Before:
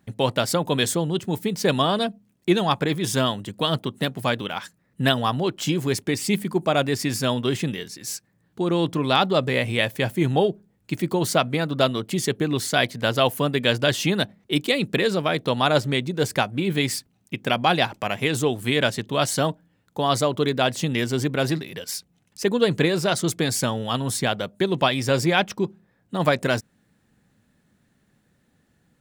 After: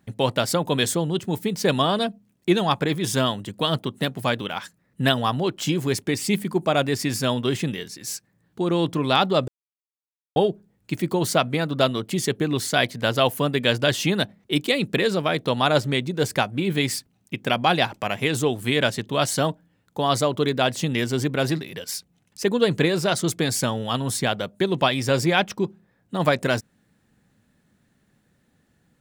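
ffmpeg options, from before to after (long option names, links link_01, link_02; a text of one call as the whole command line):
ffmpeg -i in.wav -filter_complex "[0:a]asplit=3[link_01][link_02][link_03];[link_01]atrim=end=9.48,asetpts=PTS-STARTPTS,afade=type=out:start_time=9.476:duration=0.004:curve=hsin[link_04];[link_02]atrim=start=9.48:end=10.36,asetpts=PTS-STARTPTS,volume=0[link_05];[link_03]atrim=start=10.36,asetpts=PTS-STARTPTS,afade=type=in:duration=0.004:curve=hsin[link_06];[link_04][link_05][link_06]concat=n=3:v=0:a=1" out.wav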